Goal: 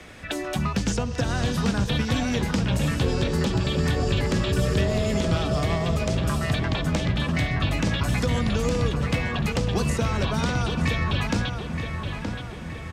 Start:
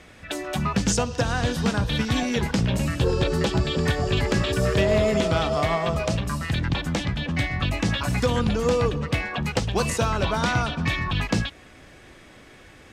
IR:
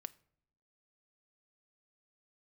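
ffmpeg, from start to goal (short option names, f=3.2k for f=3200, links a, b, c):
-filter_complex "[0:a]acrossover=split=86|290|3500[a][b][c][d];[a]acompressor=threshold=-33dB:ratio=4[e];[b]acompressor=threshold=-30dB:ratio=4[f];[c]acompressor=threshold=-34dB:ratio=4[g];[d]acompressor=threshold=-41dB:ratio=4[h];[e][f][g][h]amix=inputs=4:normalize=0,asplit=2[i][j];[j]adelay=922,lowpass=f=3.4k:p=1,volume=-6dB,asplit=2[k][l];[l]adelay=922,lowpass=f=3.4k:p=1,volume=0.53,asplit=2[m][n];[n]adelay=922,lowpass=f=3.4k:p=1,volume=0.53,asplit=2[o][p];[p]adelay=922,lowpass=f=3.4k:p=1,volume=0.53,asplit=2[q][r];[r]adelay=922,lowpass=f=3.4k:p=1,volume=0.53,asplit=2[s][t];[t]adelay=922,lowpass=f=3.4k:p=1,volume=0.53,asplit=2[u][v];[v]adelay=922,lowpass=f=3.4k:p=1,volume=0.53[w];[i][k][m][o][q][s][u][w]amix=inputs=8:normalize=0,volume=4dB"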